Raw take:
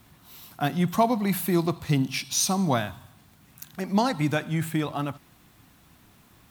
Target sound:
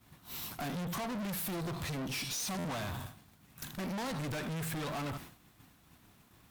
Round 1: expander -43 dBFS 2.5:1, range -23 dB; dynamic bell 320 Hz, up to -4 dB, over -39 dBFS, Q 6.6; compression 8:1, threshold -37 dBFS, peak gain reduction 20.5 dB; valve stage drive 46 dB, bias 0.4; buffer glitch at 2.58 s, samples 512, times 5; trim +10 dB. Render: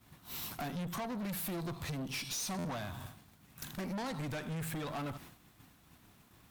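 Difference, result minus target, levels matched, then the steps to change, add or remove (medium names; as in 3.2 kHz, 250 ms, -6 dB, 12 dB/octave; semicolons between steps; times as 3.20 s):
compression: peak gain reduction +9.5 dB
change: compression 8:1, threshold -26 dBFS, peak gain reduction 10.5 dB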